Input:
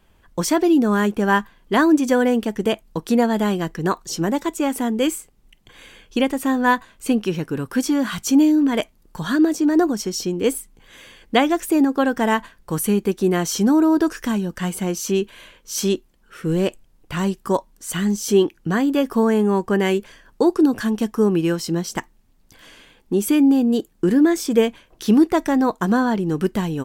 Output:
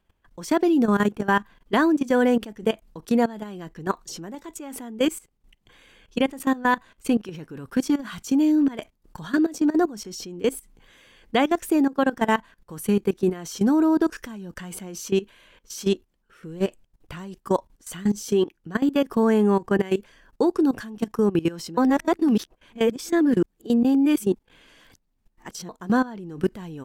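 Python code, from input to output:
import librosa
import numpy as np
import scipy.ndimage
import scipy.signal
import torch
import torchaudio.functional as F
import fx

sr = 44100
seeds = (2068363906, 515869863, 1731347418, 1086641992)

y = fx.edit(x, sr, fx.reverse_span(start_s=21.77, length_s=3.92), tone=tone)
y = fx.high_shelf(y, sr, hz=5400.0, db=-4.0)
y = fx.level_steps(y, sr, step_db=18)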